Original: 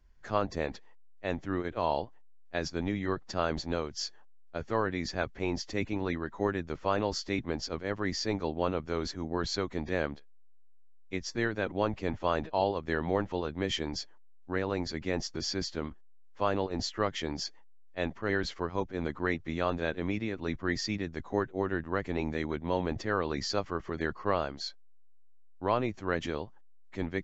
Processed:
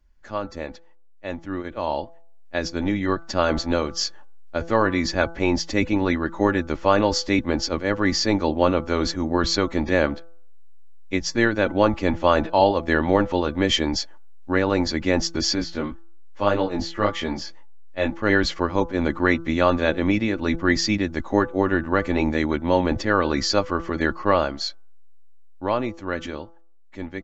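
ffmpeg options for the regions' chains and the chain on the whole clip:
-filter_complex "[0:a]asettb=1/sr,asplit=3[s0][s1][s2];[s0]atrim=end=15.554[s3];[s1]atrim=start=15.55:end=18.22,asetpts=PTS-STARTPTS,afade=t=in:d=0.004:c=qsin,afade=t=out:st=2.666:d=0.004:c=qsin,acrossover=split=3400[s4][s5];[s5]acompressor=threshold=0.00562:ratio=4:attack=1:release=60[s6];[s4][s6]amix=inputs=2:normalize=0,flanger=delay=17:depth=3.8:speed=1.8[s7];[s2]atrim=start=18.216[s8];[s3][s7]acrossfade=d=0.004:c1=hsin:c2=qsin[s9];[s9][s8]acrossfade=d=0.004:c1=qsin:c2=hsin,bandreject=f=167.3:t=h:w=4,bandreject=f=334.6:t=h:w=4,bandreject=f=501.9:t=h:w=4,bandreject=f=669.2:t=h:w=4,bandreject=f=836.5:t=h:w=4,bandreject=f=1003.8:t=h:w=4,bandreject=f=1171.1:t=h:w=4,bandreject=f=1338.4:t=h:w=4,bandreject=f=1505.7:t=h:w=4,dynaudnorm=f=400:g=13:m=3.98,aecho=1:1:3.5:0.38"

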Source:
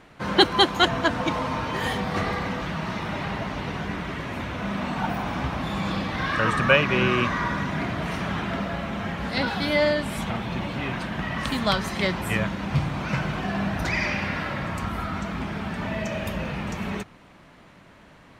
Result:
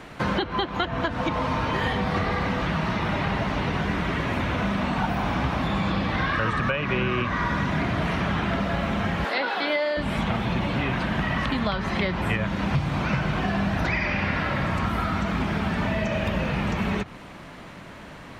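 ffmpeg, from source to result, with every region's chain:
-filter_complex "[0:a]asettb=1/sr,asplit=3[s0][s1][s2];[s0]atrim=end=9.244[s3];[s1]atrim=start=9.24:end=9.97,asetpts=PTS-STARTPTS,afade=t=in:d=0.004:c=qsin,afade=t=out:st=0.726:d=0.004:c=qsin,highpass=f=340:w=0.5412,highpass=f=340:w=1.3066,highshelf=f=10000:g=9.5[s4];[s2]atrim=start=9.966[s5];[s3][s4]acrossfade=d=0.004:c1=hsin:c2=qsin[s6];[s6][s5]acrossfade=d=0.004:c1=qsin:c2=hsin,acrossover=split=5100[s7][s8];[s8]acompressor=threshold=0.00141:ratio=4:attack=1:release=60[s9];[s7][s9]amix=inputs=2:normalize=0,alimiter=limit=0.2:level=0:latency=1:release=361,acrossover=split=92|3600[s10][s11][s12];[s10]acompressor=threshold=0.01:ratio=4[s13];[s11]acompressor=threshold=0.0224:ratio=4[s14];[s12]acompressor=threshold=0.00178:ratio=4[s15];[s13][s14][s15]amix=inputs=3:normalize=0,volume=2.82"

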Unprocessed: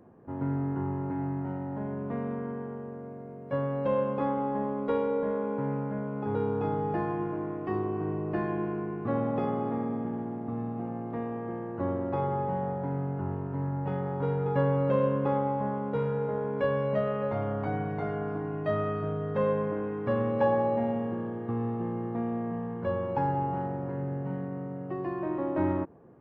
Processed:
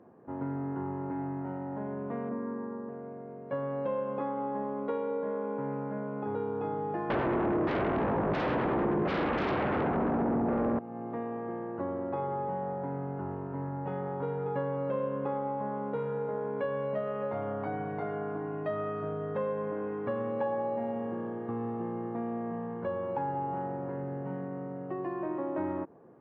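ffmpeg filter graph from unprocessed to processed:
-filter_complex "[0:a]asettb=1/sr,asplit=3[s0][s1][s2];[s0]atrim=end=2.294[s3];[s1]atrim=start=2.29:end=2.89,asetpts=PTS-STARTPTS,afade=t=in:d=0.004:c=qsin,afade=t=out:st=0.596:d=0.004:c=qsin,lowpass=1400,asplit=2[s4][s5];[s5]adelay=25,volume=0.75[s6];[s4][s6]amix=inputs=2:normalize=0,atrim=end_sample=26460[s7];[s2]atrim=start=2.886[s8];[s3][s7]acrossfade=d=0.004:c1=hsin:c2=qsin[s9];[s9][s8]acrossfade=d=0.004:c1=qsin:c2=hsin,asettb=1/sr,asplit=3[s10][s11][s12];[s10]atrim=end=7.104[s13];[s11]atrim=start=7.1:end=10.79,asetpts=PTS-STARTPTS,afade=t=in:d=0.004:c=qsin,afade=t=out:st=3.686:d=0.004:c=qsin,aeval=exprs='0.133*sin(PI/2*7.08*val(0)/0.133)':c=same,tiltshelf=f=710:g=7[s14];[s12]atrim=start=10.786[s15];[s13][s14]acrossfade=d=0.004:c1=hsin:c2=qsin[s16];[s16][s15]acrossfade=d=0.004:c1=qsin:c2=hsin,highpass=f=290:p=1,acompressor=threshold=0.0224:ratio=2.5,lowpass=f=2000:p=1,volume=1.26"

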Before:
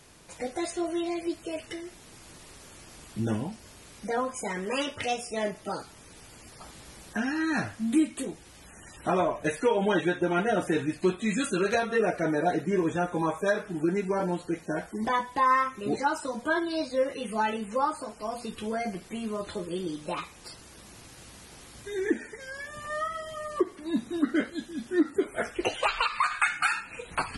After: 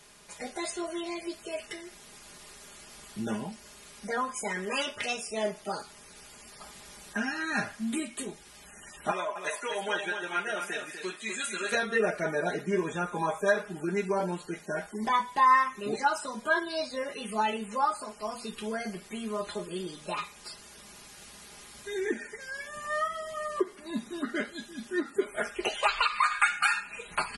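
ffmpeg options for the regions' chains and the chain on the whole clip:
-filter_complex "[0:a]asettb=1/sr,asplit=3[s0][s1][s2];[s0]atrim=end=9.114[s3];[s1]atrim=start=9.11:end=11.72,asetpts=PTS-STARTPTS,afade=t=in:d=0.004:c=qsin,afade=t=out:st=2.606:d=0.004:c=qsin,highpass=f=1100:p=1,aecho=1:1:246:0.422,atrim=end_sample=115101[s4];[s2]atrim=start=11.716[s5];[s3][s4]acrossfade=d=0.004:c1=hsin:c2=qsin[s6];[s6][s5]acrossfade=d=0.004:c1=qsin:c2=hsin,lowshelf=f=490:g=-7.5,aecho=1:1:4.9:0.58"

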